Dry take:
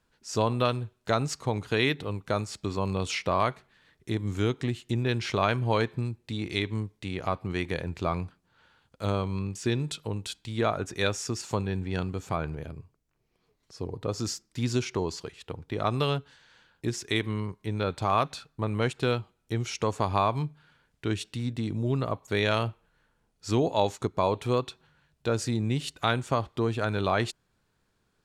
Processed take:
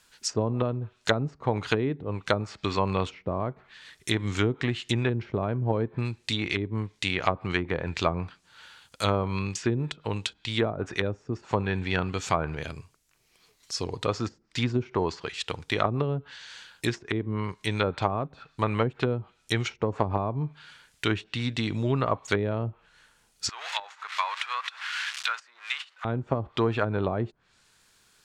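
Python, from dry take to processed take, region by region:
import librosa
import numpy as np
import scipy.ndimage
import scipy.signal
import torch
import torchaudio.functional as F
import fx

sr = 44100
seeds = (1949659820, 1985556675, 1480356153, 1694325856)

y = fx.chain(x, sr, fx.zero_step(step_db=-34.0),
    fx.highpass(hz=1200.0, slope=24), at=(23.49, 26.05))
y = fx.tilt_shelf(y, sr, db=-8.5, hz=1100.0)
y = fx.env_lowpass_down(y, sr, base_hz=390.0, full_db=-25.5)
y = fx.peak_eq(y, sr, hz=7800.0, db=3.0, octaves=0.97)
y = y * 10.0 ** (9.0 / 20.0)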